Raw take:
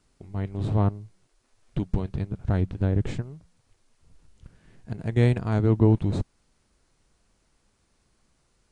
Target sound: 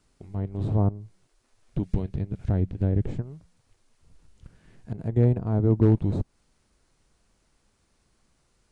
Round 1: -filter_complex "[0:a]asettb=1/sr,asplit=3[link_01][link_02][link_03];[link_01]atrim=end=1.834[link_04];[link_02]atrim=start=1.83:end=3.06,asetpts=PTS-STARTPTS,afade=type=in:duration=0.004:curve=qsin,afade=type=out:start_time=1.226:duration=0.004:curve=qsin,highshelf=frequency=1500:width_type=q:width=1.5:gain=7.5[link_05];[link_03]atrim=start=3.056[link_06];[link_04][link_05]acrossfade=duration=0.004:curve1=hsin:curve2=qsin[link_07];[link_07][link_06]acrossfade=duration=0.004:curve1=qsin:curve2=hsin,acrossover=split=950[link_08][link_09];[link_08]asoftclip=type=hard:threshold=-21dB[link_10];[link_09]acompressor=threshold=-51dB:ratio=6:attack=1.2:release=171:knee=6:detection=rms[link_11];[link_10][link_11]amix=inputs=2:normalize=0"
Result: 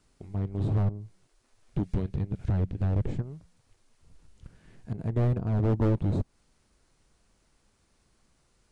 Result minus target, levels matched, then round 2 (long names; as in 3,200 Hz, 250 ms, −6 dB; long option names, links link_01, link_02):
hard clipping: distortion +22 dB
-filter_complex "[0:a]asettb=1/sr,asplit=3[link_01][link_02][link_03];[link_01]atrim=end=1.834[link_04];[link_02]atrim=start=1.83:end=3.06,asetpts=PTS-STARTPTS,afade=type=in:duration=0.004:curve=qsin,afade=type=out:start_time=1.226:duration=0.004:curve=qsin,highshelf=frequency=1500:width_type=q:width=1.5:gain=7.5[link_05];[link_03]atrim=start=3.056[link_06];[link_04][link_05]acrossfade=duration=0.004:curve1=hsin:curve2=qsin[link_07];[link_07][link_06]acrossfade=duration=0.004:curve1=qsin:curve2=hsin,acrossover=split=950[link_08][link_09];[link_08]asoftclip=type=hard:threshold=-9.5dB[link_10];[link_09]acompressor=threshold=-51dB:ratio=6:attack=1.2:release=171:knee=6:detection=rms[link_11];[link_10][link_11]amix=inputs=2:normalize=0"